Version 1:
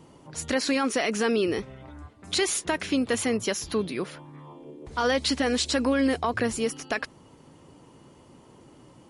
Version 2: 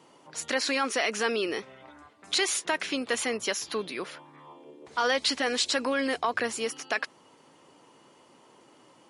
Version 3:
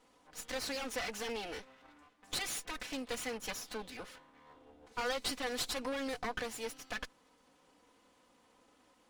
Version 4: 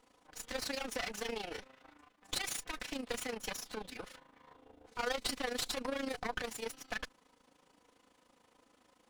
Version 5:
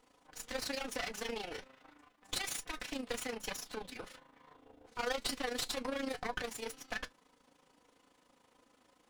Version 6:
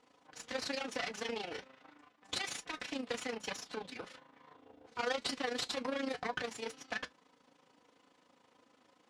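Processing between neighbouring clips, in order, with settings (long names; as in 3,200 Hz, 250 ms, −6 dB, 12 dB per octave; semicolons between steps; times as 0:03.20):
meter weighting curve A
lower of the sound and its delayed copy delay 4 ms; level −8.5 dB
amplitude modulation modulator 27 Hz, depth 60%; level +3 dB
flanger 1.1 Hz, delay 6.6 ms, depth 1.5 ms, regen −69%; level +4 dB
band-pass filter 100–6,500 Hz; level +1 dB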